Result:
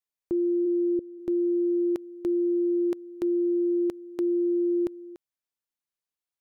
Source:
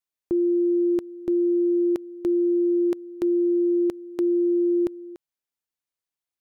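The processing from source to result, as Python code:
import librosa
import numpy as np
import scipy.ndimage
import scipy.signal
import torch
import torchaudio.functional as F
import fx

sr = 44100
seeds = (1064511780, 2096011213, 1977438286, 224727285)

y = fx.steep_lowpass(x, sr, hz=540.0, slope=72, at=(0.65, 1.18), fade=0.02)
y = y * librosa.db_to_amplitude(-3.5)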